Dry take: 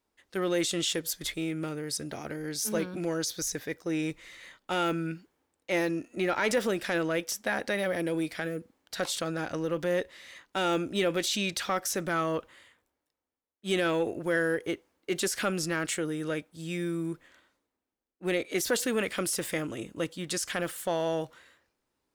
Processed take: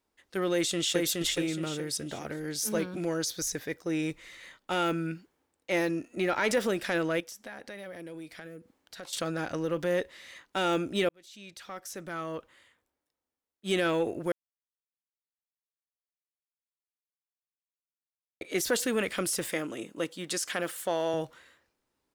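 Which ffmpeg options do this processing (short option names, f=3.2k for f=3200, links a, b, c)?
-filter_complex "[0:a]asplit=2[a][b];[b]afade=t=in:st=0.52:d=0.01,afade=t=out:st=1.01:d=0.01,aecho=0:1:420|840|1260|1680|2100:0.794328|0.278015|0.0973052|0.0340568|0.0119199[c];[a][c]amix=inputs=2:normalize=0,asettb=1/sr,asplit=3[d][e][f];[d]atrim=end=7.204[g];[e]atrim=start=7.2:end=9.13,asetpts=PTS-STARTPTS,afade=t=in:d=0.004:c=qsin,afade=t=out:st=1.926:d=0.004:c=qsin,acompressor=threshold=-50dB:ratio=2:attack=3.2:release=140:knee=1:detection=peak[h];[f]atrim=start=9.126[i];[g][h]acrossfade=d=0.004:c1=hsin:c2=qsin[j];[j][i]acrossfade=d=0.004:c1=qsin:c2=hsin,asettb=1/sr,asplit=3[k][l][m];[k]atrim=end=19.494[n];[l]atrim=start=19.49:end=21.14,asetpts=PTS-STARTPTS,afade=t=in:d=0.004:c=qsin,afade=t=out:st=1.646:d=0.004:c=qsin,highpass=210[o];[m]atrim=start=21.136[p];[n][o]acrossfade=d=0.004:c1=hsin:c2=qsin[q];[q][p]acrossfade=d=0.004:c1=qsin:c2=hsin,asplit=4[r][s][t][u];[r]atrim=end=11.09,asetpts=PTS-STARTPTS,afade=t=out:st=11.086:d=0.004:c=hsin[v];[s]atrim=start=11.09:end=14.32,asetpts=PTS-STARTPTS,afade=t=in:d=2.63,afade=t=out:st=3.226:d=0.004:c=hsin[w];[t]atrim=start=14.32:end=18.41,asetpts=PTS-STARTPTS,volume=0[x];[u]atrim=start=18.41,asetpts=PTS-STARTPTS,afade=t=in:d=0.004:c=hsin[y];[v][w][x][y]concat=n=4:v=0:a=1"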